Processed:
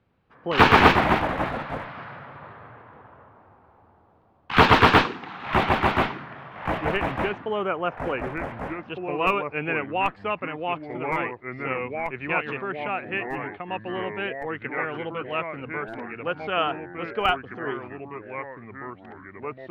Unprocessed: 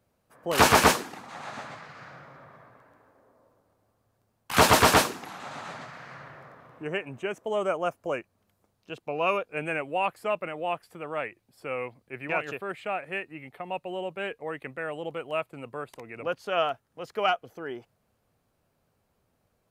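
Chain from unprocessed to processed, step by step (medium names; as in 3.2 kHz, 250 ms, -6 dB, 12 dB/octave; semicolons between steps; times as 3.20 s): low-pass 3.5 kHz 24 dB/octave; peaking EQ 610 Hz -8.5 dB 0.41 oct; in parallel at -5 dB: Schmitt trigger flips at -17 dBFS; on the sum: ever faster or slower copies 97 ms, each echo -3 st, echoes 3, each echo -6 dB; trim +4.5 dB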